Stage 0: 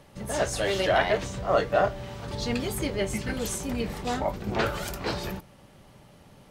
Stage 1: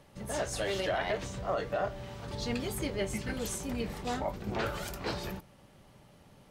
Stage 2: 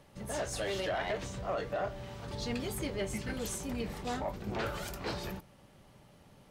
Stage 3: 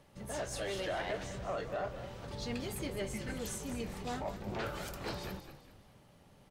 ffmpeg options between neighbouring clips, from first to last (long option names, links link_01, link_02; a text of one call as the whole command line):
ffmpeg -i in.wav -af "alimiter=limit=-17dB:level=0:latency=1:release=104,volume=-5dB" out.wav
ffmpeg -i in.wav -af "asoftclip=type=tanh:threshold=-24.5dB,volume=-1dB" out.wav
ffmpeg -i in.wav -filter_complex "[0:a]asplit=5[link_01][link_02][link_03][link_04][link_05];[link_02]adelay=204,afreqshift=-47,volume=-11dB[link_06];[link_03]adelay=408,afreqshift=-94,volume=-19.2dB[link_07];[link_04]adelay=612,afreqshift=-141,volume=-27.4dB[link_08];[link_05]adelay=816,afreqshift=-188,volume=-35.5dB[link_09];[link_01][link_06][link_07][link_08][link_09]amix=inputs=5:normalize=0,volume=-3dB" out.wav